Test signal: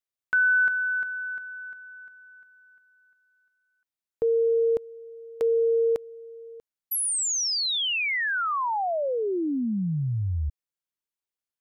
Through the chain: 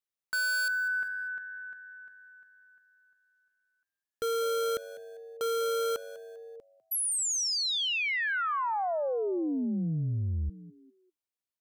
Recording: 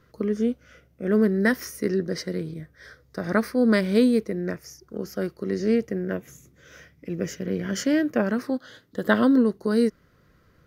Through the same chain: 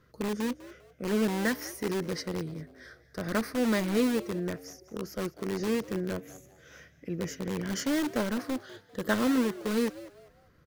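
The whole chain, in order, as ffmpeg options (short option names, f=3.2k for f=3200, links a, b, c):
-filter_complex "[0:a]asplit=2[a][b];[b]aeval=exprs='(mod(10.6*val(0)+1,2)-1)/10.6':c=same,volume=-5dB[c];[a][c]amix=inputs=2:normalize=0,asplit=4[d][e][f][g];[e]adelay=199,afreqshift=98,volume=-17.5dB[h];[f]adelay=398,afreqshift=196,volume=-27.7dB[i];[g]adelay=597,afreqshift=294,volume=-37.8dB[j];[d][h][i][j]amix=inputs=4:normalize=0,volume=-7.5dB"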